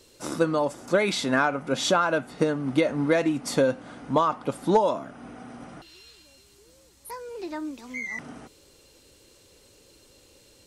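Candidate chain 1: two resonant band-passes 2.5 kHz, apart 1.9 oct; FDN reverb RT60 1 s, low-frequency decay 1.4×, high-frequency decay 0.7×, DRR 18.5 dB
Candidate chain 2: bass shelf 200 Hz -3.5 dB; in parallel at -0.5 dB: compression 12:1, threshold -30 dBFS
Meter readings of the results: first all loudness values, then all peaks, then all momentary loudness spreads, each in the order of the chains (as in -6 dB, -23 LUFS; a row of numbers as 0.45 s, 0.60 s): -37.0 LUFS, -24.0 LUFS; -19.0 dBFS, -8.0 dBFS; 23 LU, 17 LU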